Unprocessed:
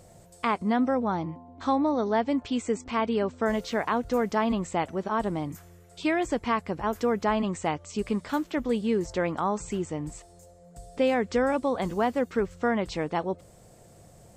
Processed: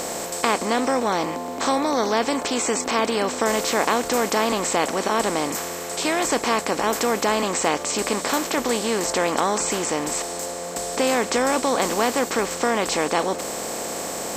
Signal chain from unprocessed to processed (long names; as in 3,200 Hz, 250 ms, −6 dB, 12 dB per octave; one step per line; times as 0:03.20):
compressor on every frequency bin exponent 0.4
bass and treble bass −8 dB, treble +15 dB